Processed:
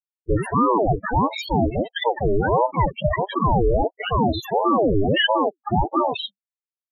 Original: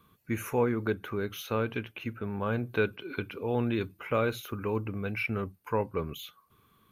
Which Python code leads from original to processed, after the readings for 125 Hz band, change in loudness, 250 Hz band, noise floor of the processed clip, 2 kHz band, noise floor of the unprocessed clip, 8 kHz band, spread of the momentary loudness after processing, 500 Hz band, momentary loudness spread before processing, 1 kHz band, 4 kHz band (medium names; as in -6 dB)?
+9.5 dB, +11.0 dB, +9.5 dB, under -85 dBFS, +7.5 dB, -66 dBFS, no reading, 5 LU, +9.5 dB, 8 LU, +17.0 dB, +16.5 dB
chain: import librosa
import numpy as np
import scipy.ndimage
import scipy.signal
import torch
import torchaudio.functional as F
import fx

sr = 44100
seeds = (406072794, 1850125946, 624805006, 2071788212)

y = fx.fuzz(x, sr, gain_db=41.0, gate_db=-45.0)
y = fx.spec_topn(y, sr, count=4)
y = fx.ring_lfo(y, sr, carrier_hz=480.0, swing_pct=60, hz=1.5)
y = y * librosa.db_to_amplitude(3.0)